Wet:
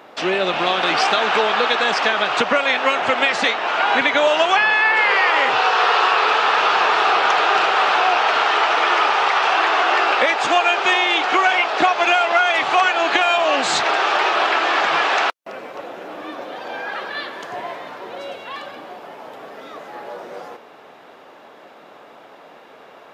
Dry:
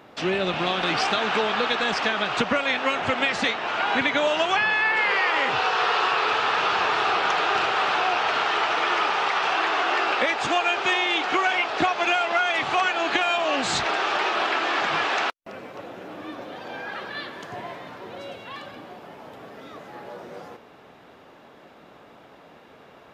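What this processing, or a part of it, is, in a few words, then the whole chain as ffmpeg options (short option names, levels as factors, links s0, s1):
filter by subtraction: -filter_complex "[0:a]asplit=2[s0][s1];[s1]lowpass=620,volume=-1[s2];[s0][s2]amix=inputs=2:normalize=0,volume=1.78"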